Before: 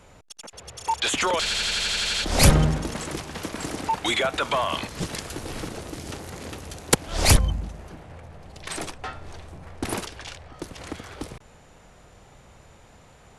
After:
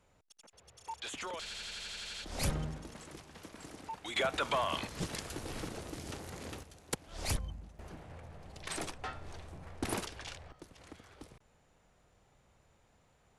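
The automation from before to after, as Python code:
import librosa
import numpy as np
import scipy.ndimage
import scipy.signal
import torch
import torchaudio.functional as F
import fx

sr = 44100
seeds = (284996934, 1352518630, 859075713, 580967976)

y = fx.gain(x, sr, db=fx.steps((0.0, -18.0), (4.16, -8.0), (6.63, -18.0), (7.79, -7.0), (10.52, -17.0)))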